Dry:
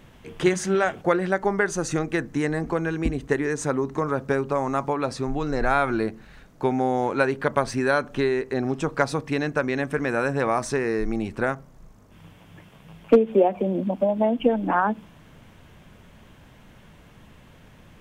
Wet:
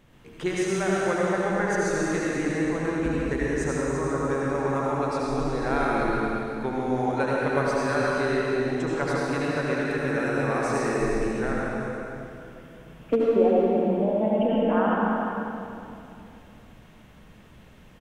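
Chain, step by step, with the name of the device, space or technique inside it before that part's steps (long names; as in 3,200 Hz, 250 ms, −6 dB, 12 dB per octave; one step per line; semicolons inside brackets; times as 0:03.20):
cave (single-tap delay 352 ms −10.5 dB; convolution reverb RT60 2.8 s, pre-delay 67 ms, DRR −5 dB)
level −8 dB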